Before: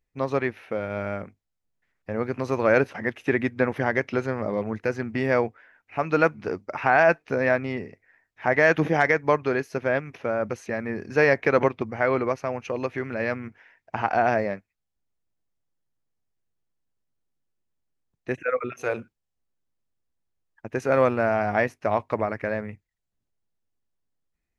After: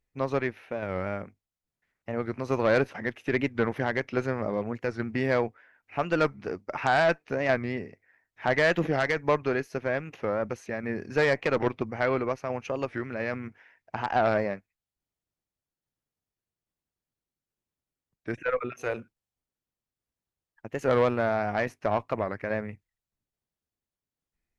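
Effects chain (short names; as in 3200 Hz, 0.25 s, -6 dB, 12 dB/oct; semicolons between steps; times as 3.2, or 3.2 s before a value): added harmonics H 5 -18 dB, 6 -22 dB, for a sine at -4.5 dBFS; tremolo saw down 1.2 Hz, depth 35%; record warp 45 rpm, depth 160 cents; gain -5.5 dB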